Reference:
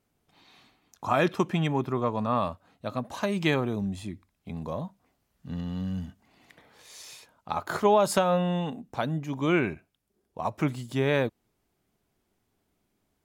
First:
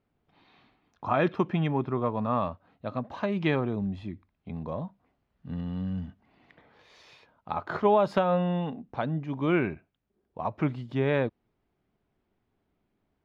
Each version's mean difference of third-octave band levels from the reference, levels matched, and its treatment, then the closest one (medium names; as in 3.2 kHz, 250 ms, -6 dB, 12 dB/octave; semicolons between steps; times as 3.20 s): 3.5 dB: distance through air 290 m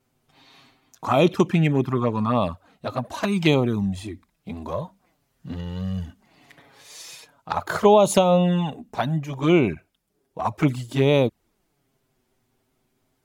2.5 dB: touch-sensitive flanger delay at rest 7.9 ms, full sweep at -21 dBFS; trim +8 dB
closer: second